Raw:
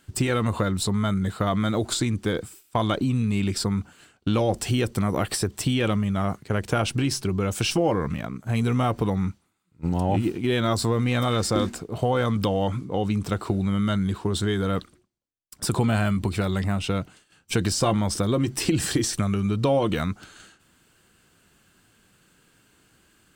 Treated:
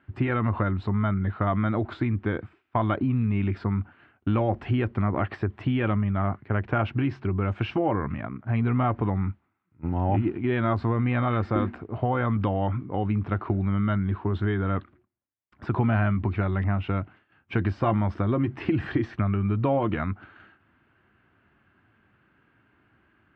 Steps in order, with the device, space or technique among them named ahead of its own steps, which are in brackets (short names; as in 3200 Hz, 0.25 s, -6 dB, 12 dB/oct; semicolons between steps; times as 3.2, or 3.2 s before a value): bass cabinet (speaker cabinet 64–2200 Hz, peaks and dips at 97 Hz +3 dB, 170 Hz -7 dB, 480 Hz -8 dB)